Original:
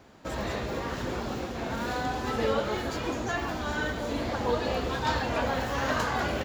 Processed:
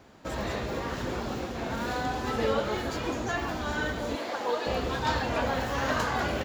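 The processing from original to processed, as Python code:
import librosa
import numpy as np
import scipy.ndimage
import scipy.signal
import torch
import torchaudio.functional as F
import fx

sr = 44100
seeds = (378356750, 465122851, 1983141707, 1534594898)

y = fx.highpass(x, sr, hz=400.0, slope=12, at=(4.15, 4.67))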